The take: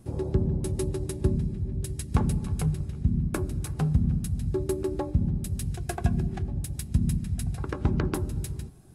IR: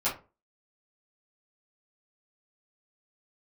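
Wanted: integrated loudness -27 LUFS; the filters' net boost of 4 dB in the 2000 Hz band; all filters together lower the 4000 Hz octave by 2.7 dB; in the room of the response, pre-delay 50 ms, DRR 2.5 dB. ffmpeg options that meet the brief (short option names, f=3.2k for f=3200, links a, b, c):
-filter_complex "[0:a]equalizer=f=2k:t=o:g=6.5,equalizer=f=4k:t=o:g=-5.5,asplit=2[a][b];[1:a]atrim=start_sample=2205,adelay=50[c];[b][c]afir=irnorm=-1:irlink=0,volume=-11.5dB[d];[a][d]amix=inputs=2:normalize=0,volume=1dB"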